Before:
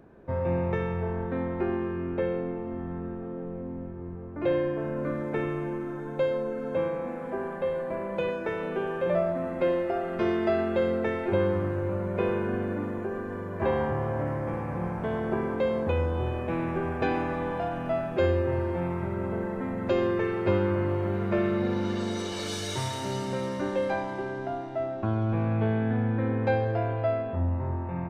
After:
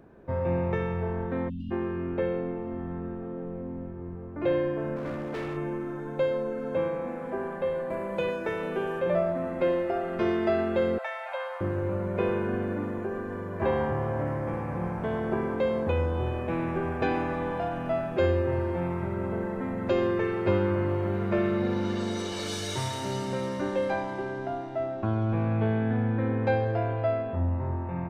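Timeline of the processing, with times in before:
1.49–1.71 s: spectral selection erased 320–2600 Hz
4.96–5.57 s: hard clipper -30.5 dBFS
7.90–9.00 s: treble shelf 5.5 kHz +8 dB
10.98–11.61 s: steep high-pass 560 Hz 96 dB/octave

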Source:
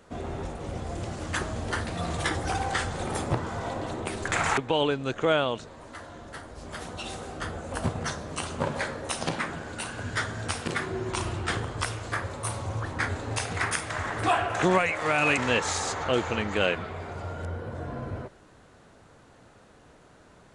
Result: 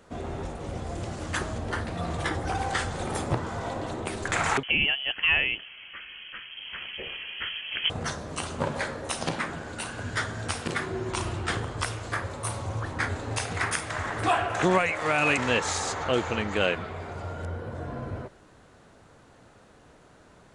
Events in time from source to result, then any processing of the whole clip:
1.58–2.59 s: treble shelf 3.3 kHz -7 dB
4.63–7.90 s: frequency inversion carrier 3.2 kHz

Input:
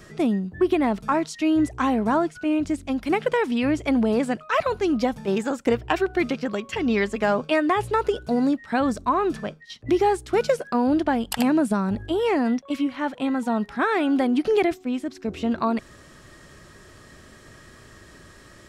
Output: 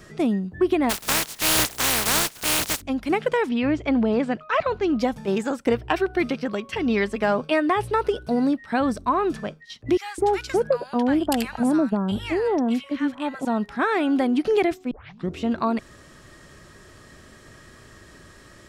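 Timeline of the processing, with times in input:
0.89–2.80 s: spectral contrast reduction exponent 0.17
3.49–4.99 s: low-pass 4.2 kHz
5.54–9.28 s: band-stop 7 kHz, Q 5.6
9.97–13.45 s: bands offset in time highs, lows 210 ms, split 1.2 kHz
14.91 s: tape start 0.43 s

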